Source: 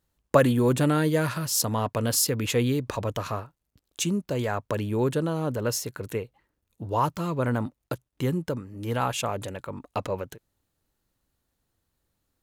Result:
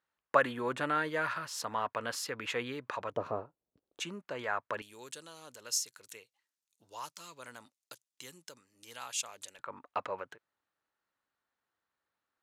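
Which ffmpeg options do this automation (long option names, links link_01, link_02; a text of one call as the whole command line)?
ffmpeg -i in.wav -af "asetnsamples=nb_out_samples=441:pad=0,asendcmd='3.12 bandpass f 480;4 bandpass f 1500;4.82 bandpass f 6400;9.59 bandpass f 1400',bandpass=frequency=1500:width_type=q:width=1.2:csg=0" out.wav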